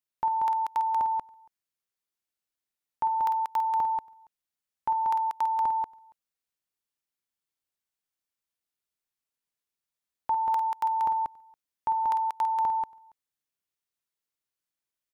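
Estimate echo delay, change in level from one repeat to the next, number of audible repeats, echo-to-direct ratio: 50 ms, no regular repeats, 2, -2.5 dB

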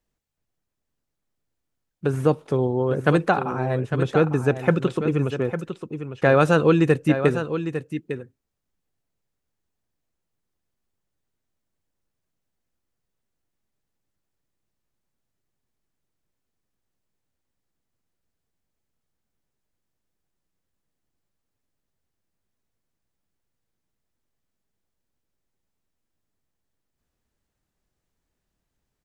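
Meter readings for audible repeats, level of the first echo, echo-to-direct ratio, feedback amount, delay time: 1, -9.5 dB, -9.5 dB, no regular repeats, 853 ms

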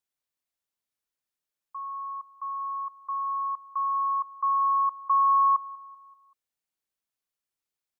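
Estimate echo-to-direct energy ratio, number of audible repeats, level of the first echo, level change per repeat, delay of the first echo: -19.0 dB, 3, -20.0 dB, -6.5 dB, 192 ms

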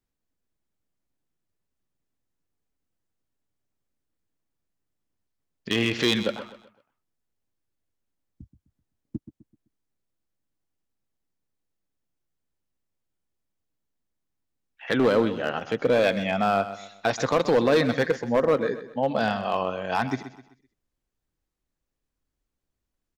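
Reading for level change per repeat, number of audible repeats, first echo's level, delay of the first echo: -8.5 dB, 3, -13.0 dB, 128 ms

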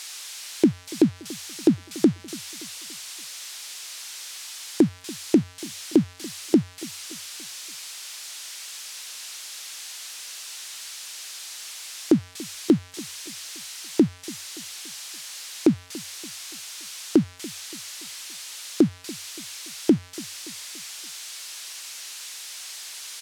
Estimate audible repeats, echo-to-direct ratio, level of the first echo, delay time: 3, -19.0 dB, -20.0 dB, 286 ms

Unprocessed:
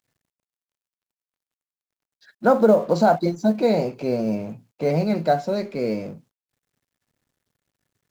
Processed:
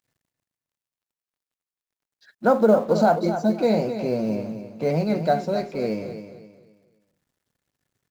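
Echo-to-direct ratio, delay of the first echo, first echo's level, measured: -9.5 dB, 262 ms, -10.0 dB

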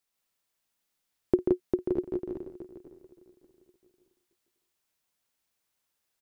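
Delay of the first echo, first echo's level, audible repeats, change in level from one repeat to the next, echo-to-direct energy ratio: 52 ms, -17.5 dB, 11, no regular repeats, -0.5 dB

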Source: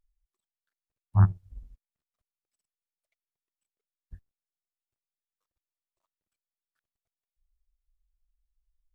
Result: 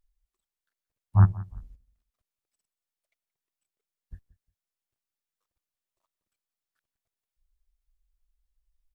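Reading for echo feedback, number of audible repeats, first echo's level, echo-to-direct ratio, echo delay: 21%, 2, -19.0 dB, -19.0 dB, 177 ms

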